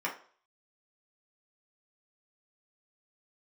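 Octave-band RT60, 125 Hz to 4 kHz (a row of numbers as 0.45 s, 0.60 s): 0.30 s, 0.40 s, 0.45 s, 0.45 s, 0.40 s, 0.45 s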